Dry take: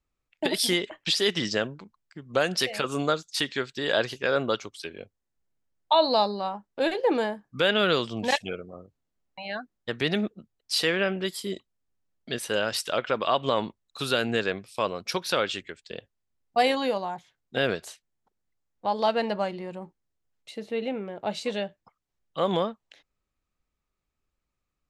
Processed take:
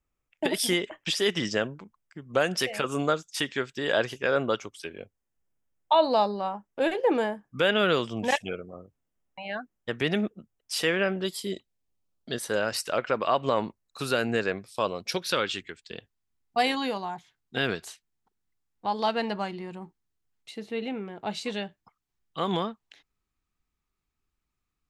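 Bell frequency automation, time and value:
bell -11 dB 0.35 oct
10.98 s 4200 Hz
11.54 s 1000 Hz
12.68 s 3400 Hz
14.57 s 3400 Hz
15.49 s 560 Hz

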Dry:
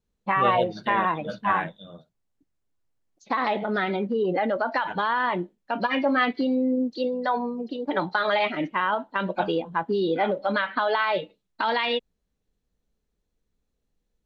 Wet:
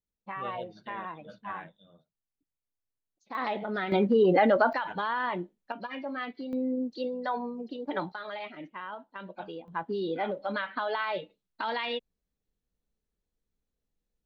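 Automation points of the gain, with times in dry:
-15 dB
from 3.35 s -6.5 dB
from 3.92 s +3 dB
from 4.73 s -6 dB
from 5.72 s -13.5 dB
from 6.53 s -6.5 dB
from 8.12 s -15.5 dB
from 9.68 s -7.5 dB

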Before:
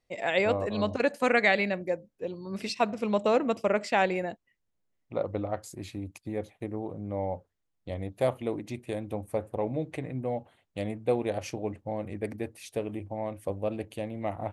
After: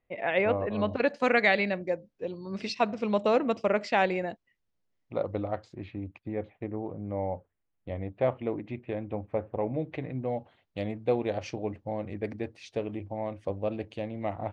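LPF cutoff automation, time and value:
LPF 24 dB/oct
0.76 s 2800 Hz
1.22 s 5900 Hz
5.45 s 5900 Hz
5.86 s 2800 Hz
9.7 s 2800 Hz
10.18 s 5500 Hz

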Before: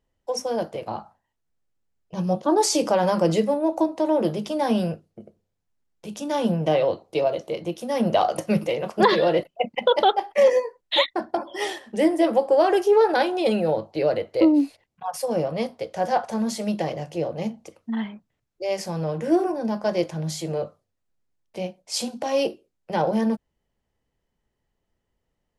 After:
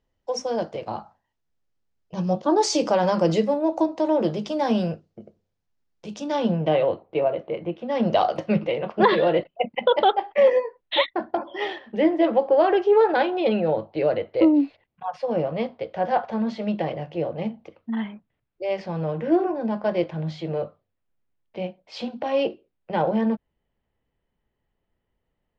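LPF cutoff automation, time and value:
LPF 24 dB/oct
6.13 s 6400 Hz
7.08 s 2600 Hz
7.76 s 2600 Hz
8.11 s 5600 Hz
8.61 s 3500 Hz

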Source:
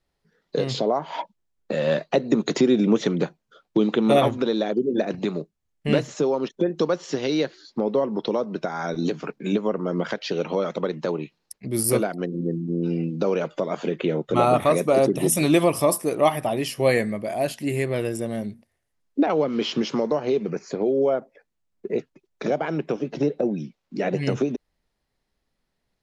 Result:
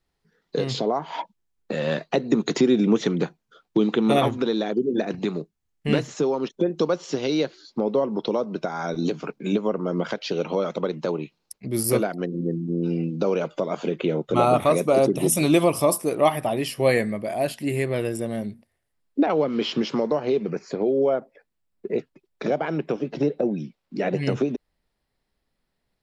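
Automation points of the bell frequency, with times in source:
bell -6.5 dB 0.24 oct
580 Hz
from 6.47 s 1800 Hz
from 11.65 s 9100 Hz
from 12.64 s 1800 Hz
from 16.11 s 6300 Hz

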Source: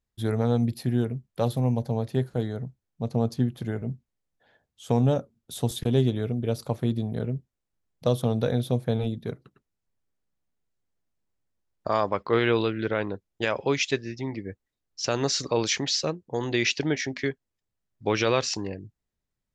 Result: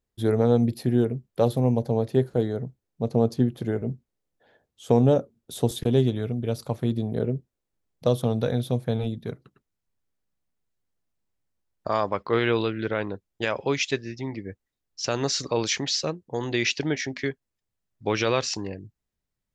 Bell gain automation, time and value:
bell 410 Hz 1.4 oct
5.67 s +7 dB
6.2 s -0.5 dB
6.76 s -0.5 dB
7.26 s +8 dB
8.55 s -0.5 dB

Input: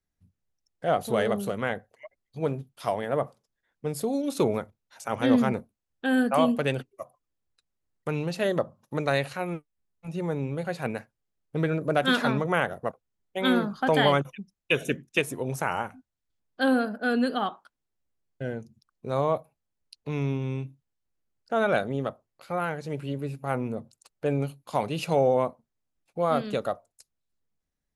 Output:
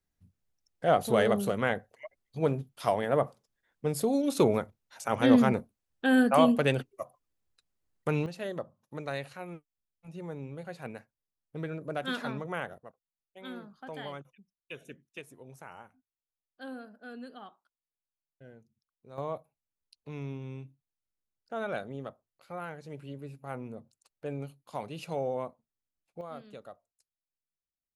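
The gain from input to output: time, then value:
+0.5 dB
from 8.26 s -10.5 dB
from 12.78 s -19.5 dB
from 19.18 s -10.5 dB
from 26.21 s -18.5 dB

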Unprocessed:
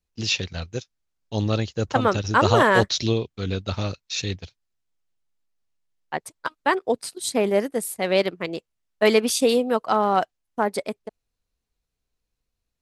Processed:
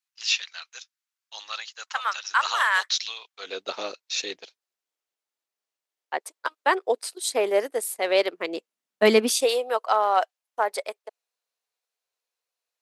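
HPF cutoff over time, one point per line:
HPF 24 dB/oct
3.18 s 1100 Hz
3.62 s 380 Hz
8.27 s 380 Hz
9.13 s 140 Hz
9.5 s 510 Hz

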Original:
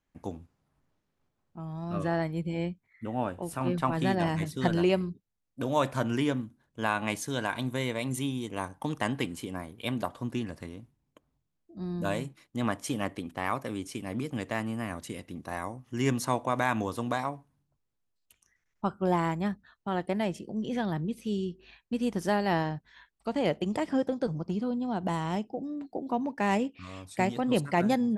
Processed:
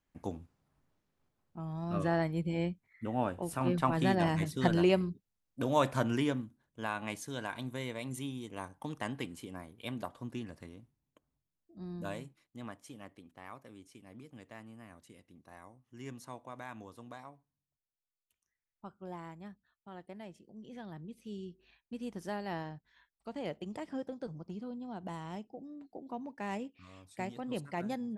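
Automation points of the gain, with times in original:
6 s -1.5 dB
6.86 s -8 dB
11.95 s -8 dB
12.92 s -18 dB
20.48 s -18 dB
21.47 s -11.5 dB

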